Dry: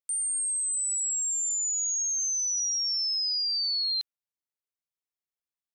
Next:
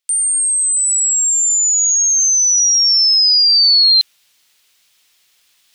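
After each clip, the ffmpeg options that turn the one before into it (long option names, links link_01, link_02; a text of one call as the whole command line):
ffmpeg -i in.wav -af "highshelf=frequency=5100:gain=7,areverse,acompressor=mode=upward:threshold=-46dB:ratio=2.5,areverse,equalizer=frequency=3200:width=0.53:gain=14,volume=3dB" out.wav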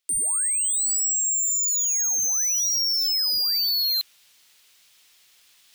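ffmpeg -i in.wav -af "asoftclip=type=tanh:threshold=-22.5dB" out.wav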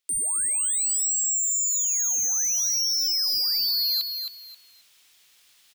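ffmpeg -i in.wav -af "aecho=1:1:267|534|801:0.473|0.114|0.0273,volume=-2dB" out.wav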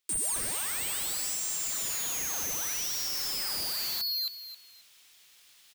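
ffmpeg -i in.wav -af "aeval=exprs='(mod(22.4*val(0)+1,2)-1)/22.4':channel_layout=same" out.wav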